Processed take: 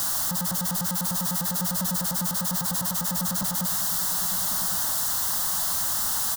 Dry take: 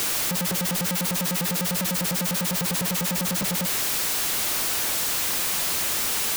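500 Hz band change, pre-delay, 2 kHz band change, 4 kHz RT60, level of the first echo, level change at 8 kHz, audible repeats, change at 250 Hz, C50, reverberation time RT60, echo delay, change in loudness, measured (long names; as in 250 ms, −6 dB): −7.5 dB, no reverb audible, −7.5 dB, no reverb audible, −11.5 dB, −0.5 dB, 1, −2.5 dB, no reverb audible, no reverb audible, 1,104 ms, −1.0 dB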